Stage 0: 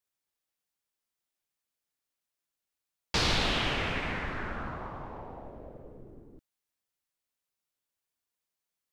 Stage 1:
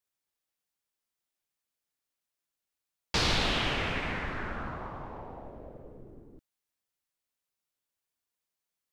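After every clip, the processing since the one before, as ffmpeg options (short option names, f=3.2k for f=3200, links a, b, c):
-af anull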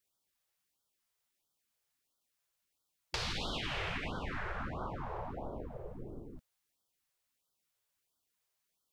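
-af "alimiter=limit=-22dB:level=0:latency=1:release=136,acompressor=threshold=-40dB:ratio=4,afftfilt=real='re*(1-between(b*sr/1024,220*pow(2200/220,0.5+0.5*sin(2*PI*1.5*pts/sr))/1.41,220*pow(2200/220,0.5+0.5*sin(2*PI*1.5*pts/sr))*1.41))':imag='im*(1-between(b*sr/1024,220*pow(2200/220,0.5+0.5*sin(2*PI*1.5*pts/sr))/1.41,220*pow(2200/220,0.5+0.5*sin(2*PI*1.5*pts/sr))*1.41))':win_size=1024:overlap=0.75,volume=4.5dB"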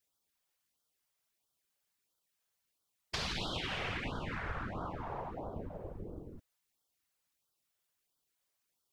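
-af "afftfilt=real='hypot(re,im)*cos(2*PI*random(0))':imag='hypot(re,im)*sin(2*PI*random(1))':win_size=512:overlap=0.75,volume=6dB"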